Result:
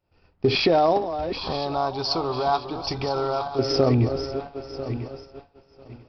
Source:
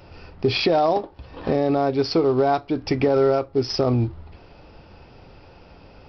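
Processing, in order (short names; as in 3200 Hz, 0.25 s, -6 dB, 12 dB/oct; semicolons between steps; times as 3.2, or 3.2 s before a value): regenerating reverse delay 0.497 s, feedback 63%, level -10 dB; expander -29 dBFS; 1.38–3.59 ten-band EQ 125 Hz -4 dB, 250 Hz -10 dB, 500 Hz -9 dB, 1000 Hz +9 dB, 2000 Hz -12 dB, 4000 Hz +6 dB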